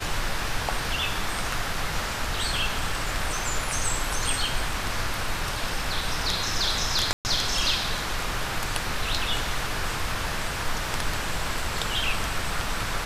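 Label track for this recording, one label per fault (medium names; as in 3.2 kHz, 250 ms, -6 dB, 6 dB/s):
7.130000	7.250000	dropout 119 ms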